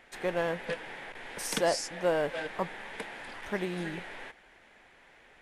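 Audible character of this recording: noise floor -59 dBFS; spectral tilt -3.5 dB/oct

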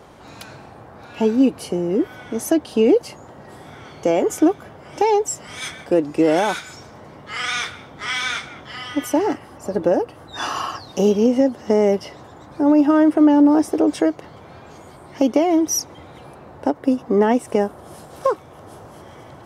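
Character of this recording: noise floor -43 dBFS; spectral tilt -4.5 dB/oct

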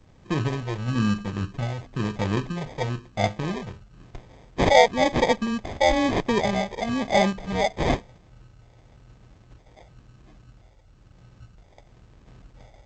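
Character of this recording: phasing stages 4, 1 Hz, lowest notch 230–4800 Hz; aliases and images of a low sample rate 1400 Hz, jitter 0%; G.722

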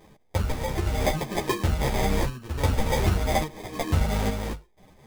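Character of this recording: a quantiser's noise floor 12-bit, dither none; random-step tremolo, depth 55%; aliases and images of a low sample rate 1400 Hz, jitter 0%; a shimmering, thickened sound

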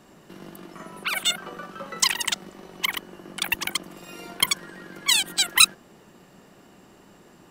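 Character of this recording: noise floor -53 dBFS; spectral tilt -0.5 dB/oct

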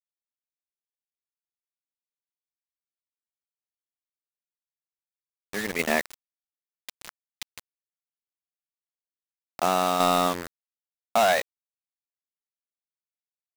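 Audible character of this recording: a quantiser's noise floor 6-bit, dither none; tremolo saw down 1.9 Hz, depth 45%

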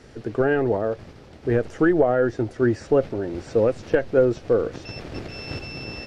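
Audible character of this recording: noise floor -46 dBFS; spectral tilt -4.5 dB/oct

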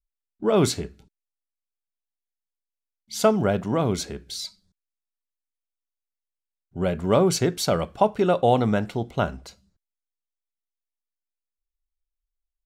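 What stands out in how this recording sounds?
noise floor -88 dBFS; spectral tilt -5.5 dB/oct

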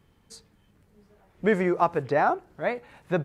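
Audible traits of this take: noise floor -63 dBFS; spectral tilt -2.5 dB/oct

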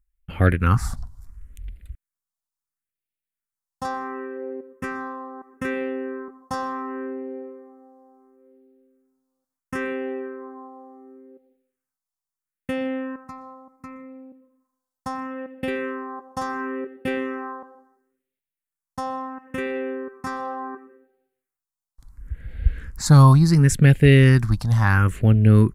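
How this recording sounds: phasing stages 4, 0.72 Hz, lowest notch 400–1000 Hz

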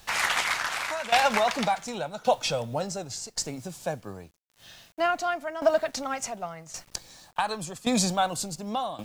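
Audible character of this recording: a quantiser's noise floor 10-bit, dither none; tremolo saw down 0.89 Hz, depth 80%

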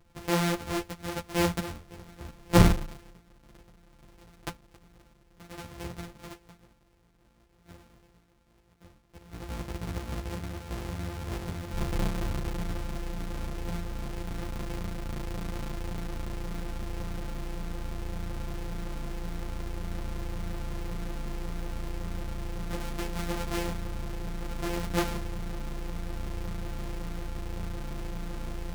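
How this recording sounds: a buzz of ramps at a fixed pitch in blocks of 256 samples; a shimmering, thickened sound

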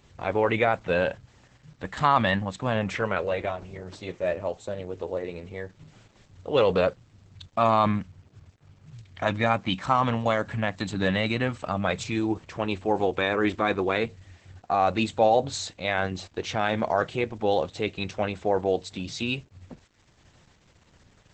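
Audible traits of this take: a quantiser's noise floor 10-bit, dither none; Opus

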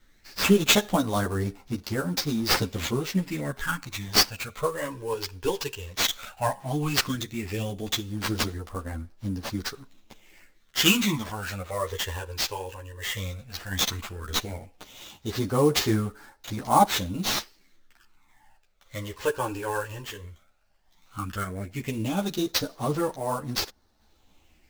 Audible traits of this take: phasing stages 12, 0.14 Hz, lowest notch 210–3100 Hz; aliases and images of a low sample rate 10000 Hz, jitter 20%; random-step tremolo; a shimmering, thickened sound

